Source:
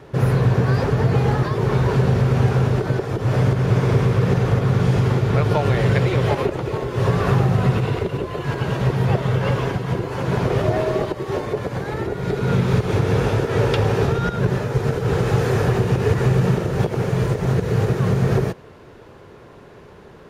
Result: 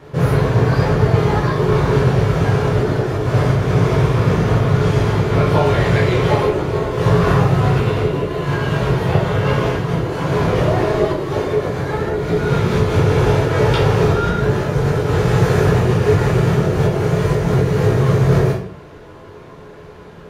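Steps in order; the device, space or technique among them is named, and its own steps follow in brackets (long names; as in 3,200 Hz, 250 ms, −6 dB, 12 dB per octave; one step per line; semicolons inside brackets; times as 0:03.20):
bathroom (convolution reverb RT60 0.60 s, pre-delay 11 ms, DRR −4.5 dB)
level −1 dB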